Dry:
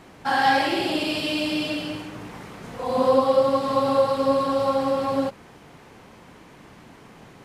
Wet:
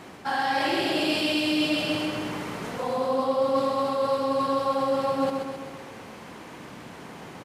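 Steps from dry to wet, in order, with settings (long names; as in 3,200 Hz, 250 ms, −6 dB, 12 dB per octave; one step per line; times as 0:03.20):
high-pass filter 130 Hz 6 dB per octave
reversed playback
downward compressor, threshold −28 dBFS, peak gain reduction 13.5 dB
reversed playback
repeating echo 131 ms, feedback 57%, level −5.5 dB
level +4.5 dB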